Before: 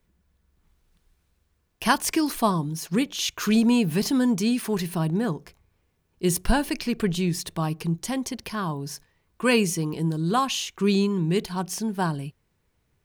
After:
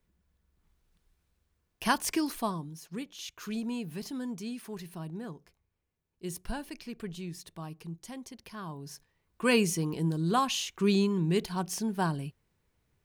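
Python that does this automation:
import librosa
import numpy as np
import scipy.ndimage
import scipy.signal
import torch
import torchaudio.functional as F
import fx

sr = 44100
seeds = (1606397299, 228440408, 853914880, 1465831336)

y = fx.gain(x, sr, db=fx.line((2.18, -6.0), (2.83, -15.0), (8.34, -15.0), (9.56, -4.0)))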